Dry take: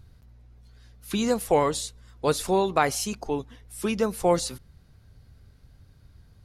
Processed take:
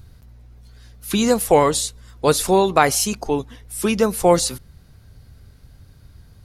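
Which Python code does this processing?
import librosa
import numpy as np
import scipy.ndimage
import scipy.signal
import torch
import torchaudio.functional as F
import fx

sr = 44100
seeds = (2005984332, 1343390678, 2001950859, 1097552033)

y = fx.high_shelf(x, sr, hz=7900.0, db=6.0)
y = y * librosa.db_to_amplitude(7.0)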